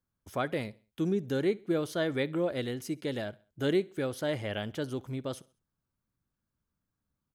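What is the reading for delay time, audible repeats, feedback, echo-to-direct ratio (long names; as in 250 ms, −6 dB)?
66 ms, 2, 42%, −22.5 dB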